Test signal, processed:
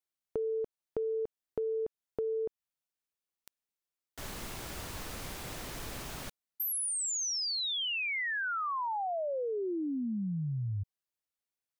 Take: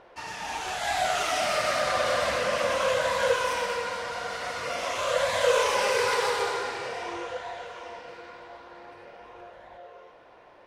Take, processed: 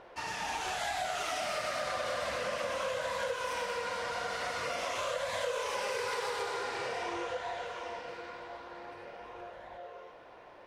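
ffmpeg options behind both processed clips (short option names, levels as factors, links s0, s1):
-af "acompressor=threshold=0.0251:ratio=6"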